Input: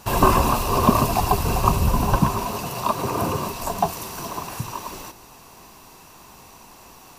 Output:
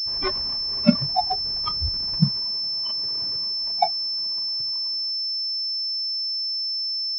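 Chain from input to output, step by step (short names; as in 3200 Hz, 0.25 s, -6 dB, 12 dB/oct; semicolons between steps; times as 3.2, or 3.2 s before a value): half-waves squared off; spectral noise reduction 28 dB; pulse-width modulation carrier 5300 Hz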